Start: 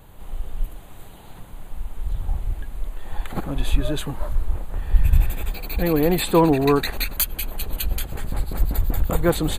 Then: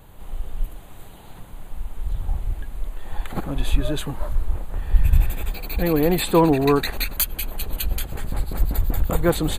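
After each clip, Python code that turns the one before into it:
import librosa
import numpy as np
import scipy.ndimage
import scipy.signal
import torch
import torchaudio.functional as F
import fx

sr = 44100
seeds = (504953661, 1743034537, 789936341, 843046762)

y = x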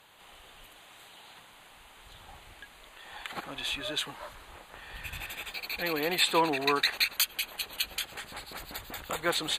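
y = fx.bandpass_q(x, sr, hz=3200.0, q=0.76)
y = y * librosa.db_to_amplitude(3.0)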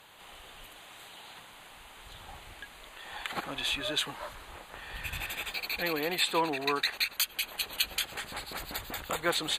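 y = fx.rider(x, sr, range_db=3, speed_s=0.5)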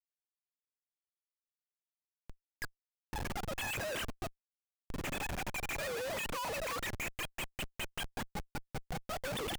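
y = fx.sine_speech(x, sr)
y = fx.schmitt(y, sr, flips_db=-36.5)
y = y * librosa.db_to_amplitude(-2.0)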